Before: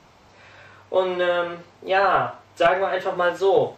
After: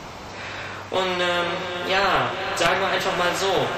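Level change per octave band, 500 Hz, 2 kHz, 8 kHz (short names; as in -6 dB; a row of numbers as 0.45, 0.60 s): -3.5 dB, +3.0 dB, n/a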